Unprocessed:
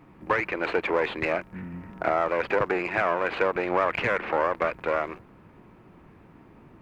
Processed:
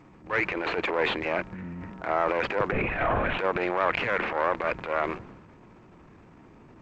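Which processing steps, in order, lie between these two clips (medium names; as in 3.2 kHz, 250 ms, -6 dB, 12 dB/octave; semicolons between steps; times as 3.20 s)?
2.72–3.39 s: LPC vocoder at 8 kHz whisper; transient shaper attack -12 dB, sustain +7 dB; G.722 64 kbps 16 kHz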